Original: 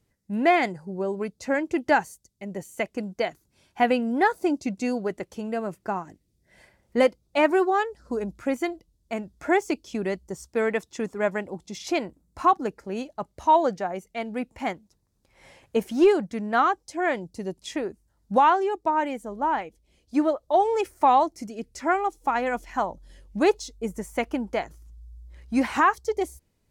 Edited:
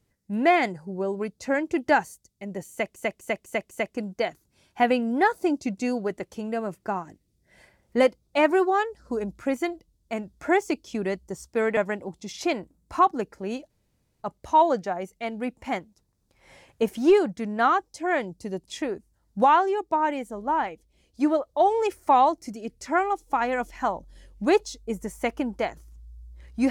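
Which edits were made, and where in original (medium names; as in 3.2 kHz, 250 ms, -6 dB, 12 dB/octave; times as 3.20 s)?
2.71–2.96 s: loop, 5 plays
10.77–11.23 s: delete
13.16 s: insert room tone 0.52 s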